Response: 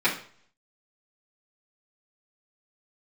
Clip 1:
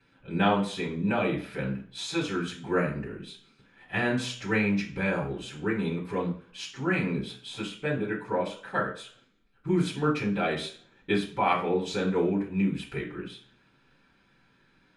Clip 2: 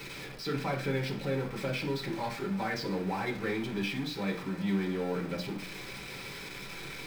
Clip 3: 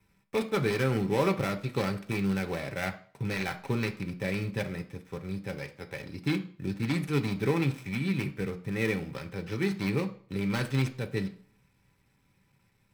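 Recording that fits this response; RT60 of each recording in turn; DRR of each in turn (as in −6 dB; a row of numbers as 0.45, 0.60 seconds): 1; 0.50, 0.50, 0.50 seconds; −10.5, −4.0, 4.5 decibels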